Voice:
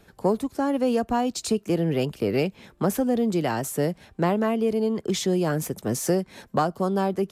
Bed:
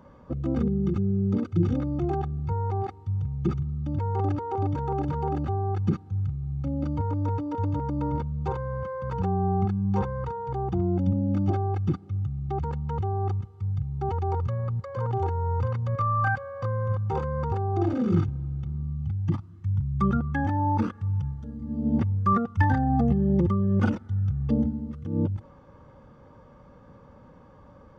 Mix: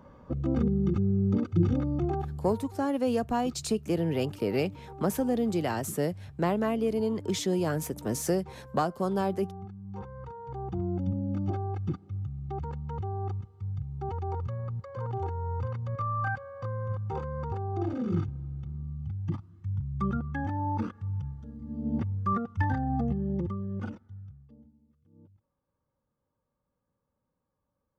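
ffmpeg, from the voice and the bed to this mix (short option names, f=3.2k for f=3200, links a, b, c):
-filter_complex "[0:a]adelay=2200,volume=-4.5dB[a];[1:a]volume=10.5dB,afade=t=out:st=1.96:d=0.72:silence=0.149624,afade=t=in:st=9.84:d=0.99:silence=0.266073,afade=t=out:st=22.93:d=1.57:silence=0.0530884[b];[a][b]amix=inputs=2:normalize=0"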